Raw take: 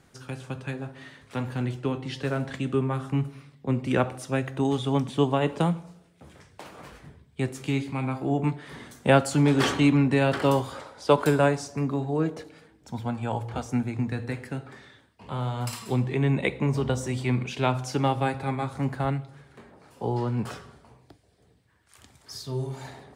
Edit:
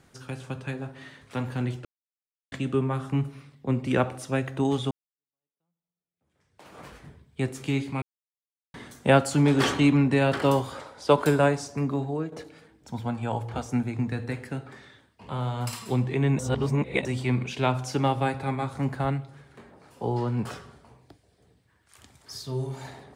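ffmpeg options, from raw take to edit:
ffmpeg -i in.wav -filter_complex "[0:a]asplit=9[link_01][link_02][link_03][link_04][link_05][link_06][link_07][link_08][link_09];[link_01]atrim=end=1.85,asetpts=PTS-STARTPTS,afade=type=out:start_time=1.846:duration=0.004:curve=hsin[link_10];[link_02]atrim=start=1.85:end=2.52,asetpts=PTS-STARTPTS,volume=0[link_11];[link_03]atrim=start=2.52:end=4.91,asetpts=PTS-STARTPTS,afade=type=in:duration=0.004:curve=hsin,afade=type=out:start_time=2.386:duration=0.004:curve=hsin[link_12];[link_04]atrim=start=4.91:end=8.02,asetpts=PTS-STARTPTS,afade=type=in:duration=1.86:curve=exp,afade=type=out:start_time=3.106:duration=0.004:curve=hsin[link_13];[link_05]atrim=start=8.02:end=8.74,asetpts=PTS-STARTPTS,volume=0[link_14];[link_06]atrim=start=8.74:end=12.32,asetpts=PTS-STARTPTS,afade=type=in:duration=0.004:curve=hsin,afade=type=out:start_time=3.29:duration=0.29:silence=0.266073[link_15];[link_07]atrim=start=12.32:end=16.392,asetpts=PTS-STARTPTS,afade=type=in:duration=0.004:curve=hsin:silence=0.266073[link_16];[link_08]atrim=start=16.388:end=17.052,asetpts=PTS-STARTPTS,areverse[link_17];[link_09]atrim=start=17.048[link_18];[link_10][link_11][link_12][link_13][link_14][link_15][link_16]concat=n=7:v=0:a=1[link_19];[link_19][link_17]acrossfade=duration=0.004:curve1=hsin:curve2=hsin[link_20];[link_20][link_18]acrossfade=duration=0.004:curve1=hsin:curve2=hsin" out.wav

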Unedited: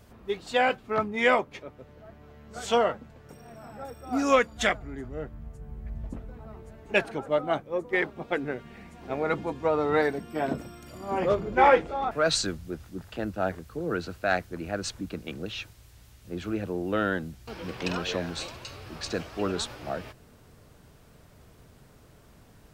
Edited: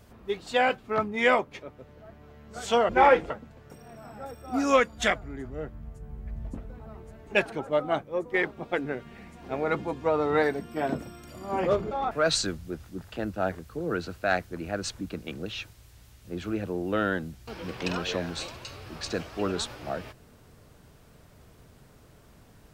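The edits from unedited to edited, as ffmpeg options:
ffmpeg -i in.wav -filter_complex "[0:a]asplit=4[link_01][link_02][link_03][link_04];[link_01]atrim=end=2.892[link_05];[link_02]atrim=start=11.498:end=11.912[link_06];[link_03]atrim=start=2.888:end=11.502[link_07];[link_04]atrim=start=11.908[link_08];[link_05][link_06]acrossfade=duration=0.004:curve1=hsin:curve2=hsin[link_09];[link_09][link_07]acrossfade=duration=0.004:curve1=hsin:curve2=hsin[link_10];[link_10][link_08]acrossfade=duration=0.004:curve1=hsin:curve2=hsin" out.wav

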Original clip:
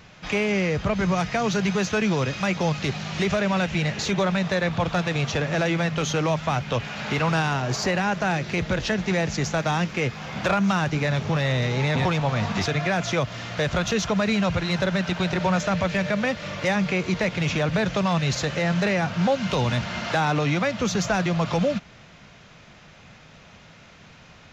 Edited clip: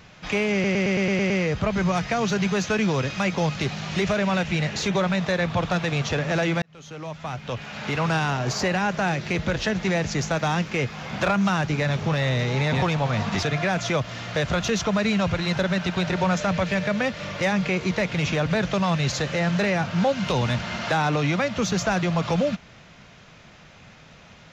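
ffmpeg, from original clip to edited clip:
ffmpeg -i in.wav -filter_complex "[0:a]asplit=9[link_01][link_02][link_03][link_04][link_05][link_06][link_07][link_08][link_09];[link_01]atrim=end=0.642[link_10];[link_02]atrim=start=0.528:end=0.642[link_11];[link_03]atrim=start=0.528:end=0.642[link_12];[link_04]atrim=start=0.528:end=0.642[link_13];[link_05]atrim=start=0.528:end=0.642[link_14];[link_06]atrim=start=0.528:end=0.642[link_15];[link_07]atrim=start=0.528:end=0.642[link_16];[link_08]atrim=start=0.528:end=5.85,asetpts=PTS-STARTPTS,afade=type=out:start_time=5.318:duration=0.004:curve=hsin[link_17];[link_09]atrim=start=5.85,asetpts=PTS-STARTPTS,afade=type=in:duration=1.62[link_18];[link_10][link_11]acrossfade=duration=0.004:curve1=hsin:curve2=hsin[link_19];[link_19][link_12]acrossfade=duration=0.004:curve1=hsin:curve2=hsin[link_20];[link_20][link_13]acrossfade=duration=0.004:curve1=hsin:curve2=hsin[link_21];[link_21][link_14]acrossfade=duration=0.004:curve1=hsin:curve2=hsin[link_22];[link_22][link_15]acrossfade=duration=0.004:curve1=hsin:curve2=hsin[link_23];[link_23][link_16]acrossfade=duration=0.004:curve1=hsin:curve2=hsin[link_24];[link_17][link_18]concat=n=2:v=0:a=1[link_25];[link_24][link_25]acrossfade=duration=0.004:curve1=hsin:curve2=hsin" out.wav

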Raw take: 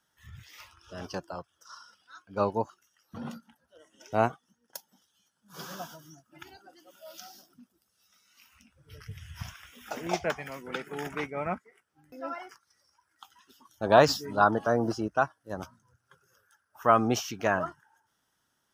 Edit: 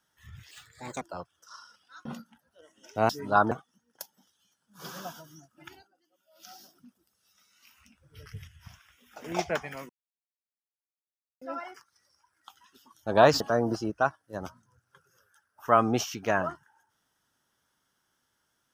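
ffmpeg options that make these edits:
ffmpeg -i in.wav -filter_complex "[0:a]asplit=13[link_01][link_02][link_03][link_04][link_05][link_06][link_07][link_08][link_09][link_10][link_11][link_12][link_13];[link_01]atrim=end=0.514[link_14];[link_02]atrim=start=0.51:end=1.2,asetpts=PTS-STARTPTS,asetrate=60417,aresample=44100[link_15];[link_03]atrim=start=1.196:end=2.242[link_16];[link_04]atrim=start=3.218:end=4.262[link_17];[link_05]atrim=start=14.148:end=14.572[link_18];[link_06]atrim=start=4.258:end=6.65,asetpts=PTS-STARTPTS,afade=type=out:start_time=2.202:duration=0.19:silence=0.133352[link_19];[link_07]atrim=start=6.65:end=7.09,asetpts=PTS-STARTPTS,volume=-17.5dB[link_20];[link_08]atrim=start=7.09:end=9.222,asetpts=PTS-STARTPTS,afade=type=in:duration=0.19:silence=0.133352[link_21];[link_09]atrim=start=9.218:end=9.992,asetpts=PTS-STARTPTS,volume=-10dB[link_22];[link_10]atrim=start=9.988:end=10.64,asetpts=PTS-STARTPTS,afade=type=out:start_time=0.648:duration=0.004:curve=hsin[link_23];[link_11]atrim=start=10.64:end=12.16,asetpts=PTS-STARTPTS,volume=0[link_24];[link_12]atrim=start=12.16:end=14.152,asetpts=PTS-STARTPTS,afade=type=in:duration=0.004:curve=hsin[link_25];[link_13]atrim=start=14.568[link_26];[link_14][link_15]acrossfade=duration=0.004:curve1=hsin:curve2=hsin[link_27];[link_27][link_16]acrossfade=duration=0.004:curve1=hsin:curve2=hsin[link_28];[link_28][link_17]acrossfade=duration=0.004:curve1=hsin:curve2=hsin[link_29];[link_29][link_18]acrossfade=duration=0.004:curve1=hsin:curve2=hsin[link_30];[link_19][link_20][link_21]concat=n=3:v=0:a=1[link_31];[link_30][link_31]acrossfade=duration=0.004:curve1=hsin:curve2=hsin[link_32];[link_32][link_22]acrossfade=duration=0.004:curve1=hsin:curve2=hsin[link_33];[link_23][link_24][link_25]concat=n=3:v=0:a=1[link_34];[link_33][link_34]acrossfade=duration=0.004:curve1=hsin:curve2=hsin[link_35];[link_35][link_26]acrossfade=duration=0.004:curve1=hsin:curve2=hsin" out.wav

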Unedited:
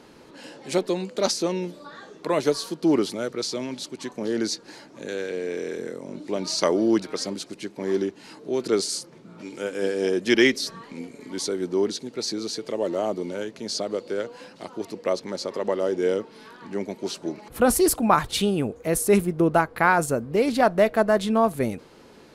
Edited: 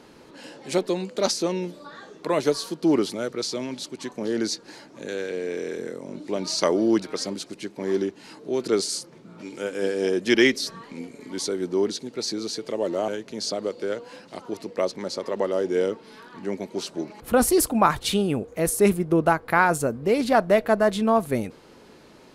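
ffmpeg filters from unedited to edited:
ffmpeg -i in.wav -filter_complex "[0:a]asplit=2[link_01][link_02];[link_01]atrim=end=13.082[link_03];[link_02]atrim=start=13.358[link_04];[link_03][link_04]acrossfade=duration=0.004:curve1=hsin:curve2=hsin" out.wav

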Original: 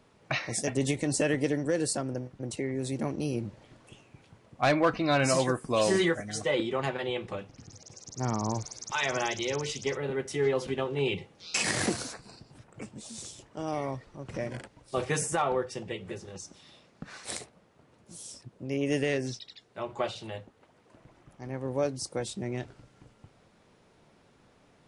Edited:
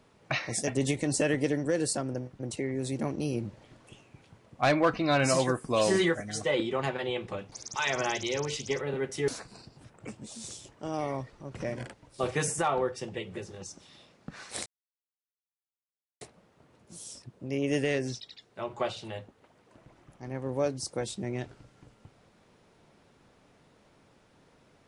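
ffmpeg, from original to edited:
ffmpeg -i in.wav -filter_complex "[0:a]asplit=4[link_01][link_02][link_03][link_04];[link_01]atrim=end=7.522[link_05];[link_02]atrim=start=8.678:end=10.442[link_06];[link_03]atrim=start=12.018:end=17.4,asetpts=PTS-STARTPTS,afade=type=out:start_time=5.378:duration=0.004:curve=hsin,apad=pad_dur=1.55[link_07];[link_04]atrim=start=17.4,asetpts=PTS-STARTPTS,afade=type=in:duration=0.004:curve=hsin[link_08];[link_05][link_06]acrossfade=duration=0.004:curve1=hsin:curve2=hsin[link_09];[link_07][link_08]concat=n=2:v=0:a=1[link_10];[link_09][link_10]acrossfade=duration=0.004:curve1=hsin:curve2=hsin" out.wav

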